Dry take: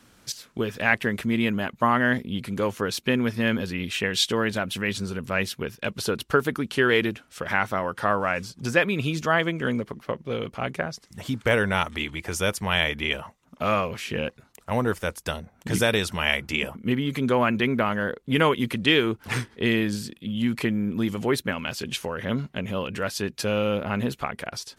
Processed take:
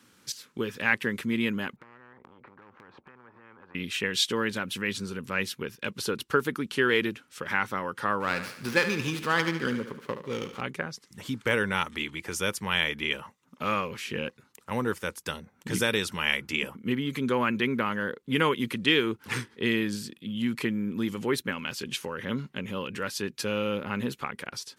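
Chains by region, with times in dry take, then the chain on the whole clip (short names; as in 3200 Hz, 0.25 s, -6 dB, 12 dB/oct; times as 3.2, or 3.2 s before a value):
1.76–3.75 Chebyshev low-pass 650 Hz, order 3 + compressor 12:1, threshold -35 dBFS + spectral compressor 10:1
8.2–10.61 high shelf 3900 Hz +6 dB + thinning echo 73 ms, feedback 55%, high-pass 220 Hz, level -10 dB + running maximum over 5 samples
whole clip: Bessel high-pass 150 Hz, order 2; bell 670 Hz -13 dB 0.32 oct; gain -2.5 dB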